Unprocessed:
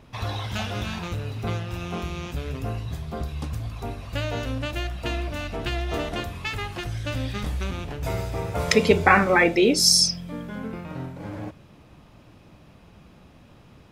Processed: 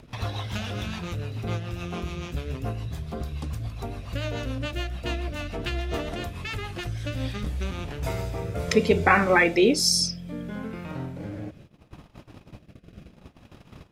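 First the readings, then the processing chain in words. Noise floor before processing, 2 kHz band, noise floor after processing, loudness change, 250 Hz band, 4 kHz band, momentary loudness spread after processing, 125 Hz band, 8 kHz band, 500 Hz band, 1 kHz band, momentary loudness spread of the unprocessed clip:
-51 dBFS, -2.0 dB, -54 dBFS, -2.5 dB, -1.0 dB, -4.5 dB, 15 LU, -1.0 dB, -5.0 dB, -1.5 dB, -2.5 dB, 17 LU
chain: gate -47 dBFS, range -28 dB; rotary cabinet horn 7 Hz, later 0.7 Hz, at 6.67 s; upward compressor, threshold -30 dBFS

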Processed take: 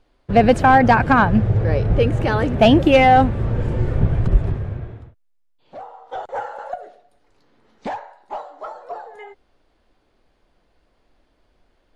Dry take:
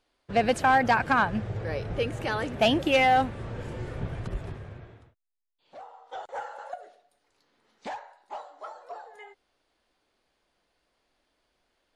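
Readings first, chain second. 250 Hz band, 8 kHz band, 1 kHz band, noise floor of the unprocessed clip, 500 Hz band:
+13.0 dB, no reading, +8.5 dB, -76 dBFS, +10.0 dB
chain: tilt EQ -2.5 dB/octave; trim +8 dB

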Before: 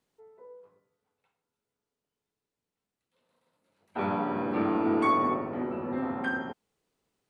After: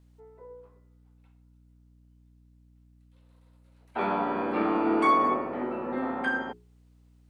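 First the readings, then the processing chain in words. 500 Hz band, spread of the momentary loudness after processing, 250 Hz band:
+2.0 dB, 10 LU, 0.0 dB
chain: high-pass 170 Hz; bass shelf 250 Hz -6 dB; hum notches 60/120/180/240/300/360/420 Hz; hum 60 Hz, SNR 27 dB; trim +3.5 dB

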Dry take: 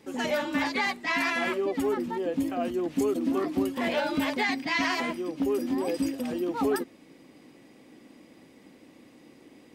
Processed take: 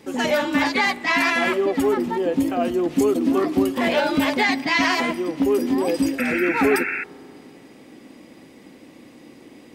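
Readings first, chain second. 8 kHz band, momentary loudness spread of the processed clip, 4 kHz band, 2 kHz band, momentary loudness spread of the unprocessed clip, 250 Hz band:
+7.5 dB, 4 LU, +7.5 dB, +8.5 dB, 4 LU, +7.5 dB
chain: spring tank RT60 3 s, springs 34 ms, chirp 35 ms, DRR 18 dB; painted sound noise, 6.18–7.04 s, 1.3–2.7 kHz -34 dBFS; trim +7.5 dB

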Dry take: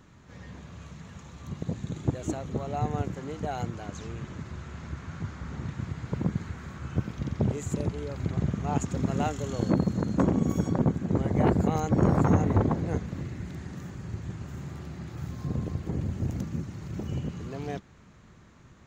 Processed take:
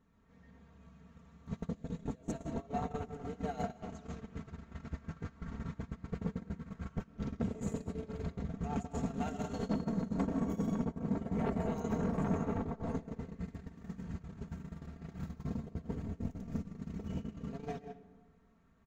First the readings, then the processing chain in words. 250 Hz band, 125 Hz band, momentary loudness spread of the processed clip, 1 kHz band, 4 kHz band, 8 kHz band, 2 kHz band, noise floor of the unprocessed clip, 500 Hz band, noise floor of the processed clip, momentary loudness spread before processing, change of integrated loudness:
-8.0 dB, -12.0 dB, 12 LU, -9.0 dB, -10.5 dB, -11.5 dB, -9.5 dB, -54 dBFS, -8.5 dB, -64 dBFS, 15 LU, -9.5 dB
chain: peaking EQ 97 Hz +4 dB 0.69 oct; pre-echo 183 ms -19 dB; algorithmic reverb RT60 1.2 s, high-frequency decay 0.5×, pre-delay 90 ms, DRR 1.5 dB; compression 6:1, threshold -35 dBFS, peak gain reduction 20 dB; gate -35 dBFS, range -26 dB; saturation -38 dBFS, distortion -10 dB; comb 4.4 ms, depth 76%; tape noise reduction on one side only decoder only; trim +9 dB

